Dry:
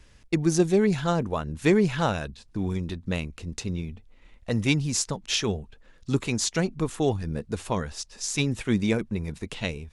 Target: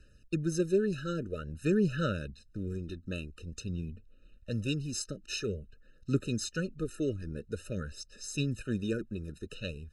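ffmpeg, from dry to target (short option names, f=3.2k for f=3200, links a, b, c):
-af "aphaser=in_gain=1:out_gain=1:delay=3.1:decay=0.33:speed=0.49:type=sinusoidal,afftfilt=real='re*eq(mod(floor(b*sr/1024/610),2),0)':imag='im*eq(mod(floor(b*sr/1024/610),2),0)':win_size=1024:overlap=0.75,volume=-7.5dB"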